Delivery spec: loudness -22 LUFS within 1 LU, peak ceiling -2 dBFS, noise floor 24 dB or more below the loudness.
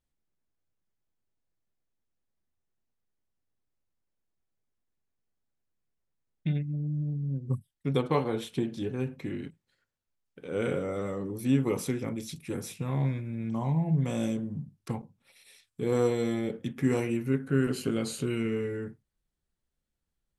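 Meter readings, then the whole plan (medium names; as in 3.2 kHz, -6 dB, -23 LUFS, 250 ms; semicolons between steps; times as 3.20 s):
loudness -31.0 LUFS; peak level -12.5 dBFS; loudness target -22.0 LUFS
-> trim +9 dB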